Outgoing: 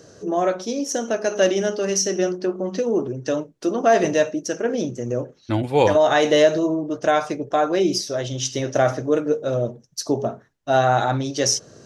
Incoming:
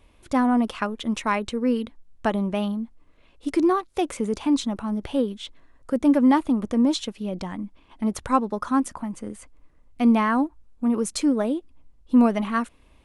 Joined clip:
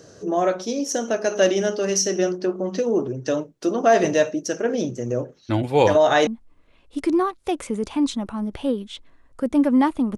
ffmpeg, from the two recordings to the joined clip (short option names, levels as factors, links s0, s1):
-filter_complex "[0:a]apad=whole_dur=10.17,atrim=end=10.17,atrim=end=6.272[s0];[1:a]atrim=start=2.768:end=6.67[s1];[s0][s1]acrossfade=d=0.004:c1=hsin:c2=hsin"